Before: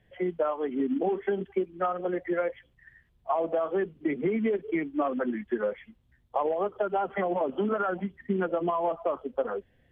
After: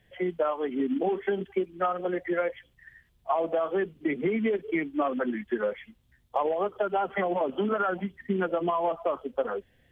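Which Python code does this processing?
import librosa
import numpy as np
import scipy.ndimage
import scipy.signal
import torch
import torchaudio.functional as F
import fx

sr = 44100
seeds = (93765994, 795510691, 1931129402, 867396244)

y = fx.high_shelf(x, sr, hz=2500.0, db=9.0)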